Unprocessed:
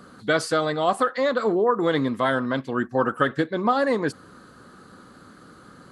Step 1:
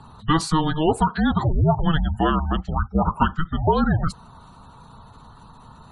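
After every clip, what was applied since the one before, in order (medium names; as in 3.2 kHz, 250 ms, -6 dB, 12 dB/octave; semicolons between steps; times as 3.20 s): frequency shift -320 Hz; spectral gate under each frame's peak -30 dB strong; trim +2.5 dB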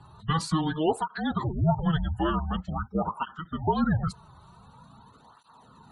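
cancelling through-zero flanger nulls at 0.46 Hz, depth 4.5 ms; trim -3.5 dB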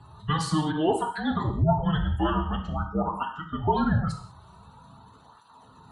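gated-style reverb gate 220 ms falling, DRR 3.5 dB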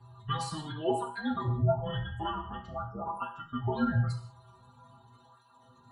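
inharmonic resonator 120 Hz, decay 0.31 s, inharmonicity 0.008; trim +4.5 dB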